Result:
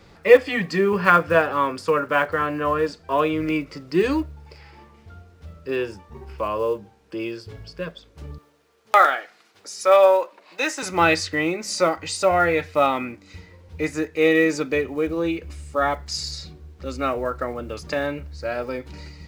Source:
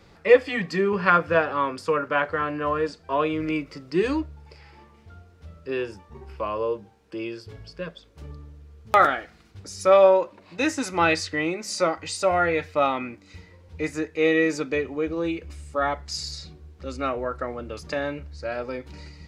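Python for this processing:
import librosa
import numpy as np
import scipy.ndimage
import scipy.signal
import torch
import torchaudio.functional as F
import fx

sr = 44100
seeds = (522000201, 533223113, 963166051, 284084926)

y = fx.block_float(x, sr, bits=7)
y = fx.highpass(y, sr, hz=520.0, slope=12, at=(8.38, 10.83))
y = y * 10.0 ** (3.0 / 20.0)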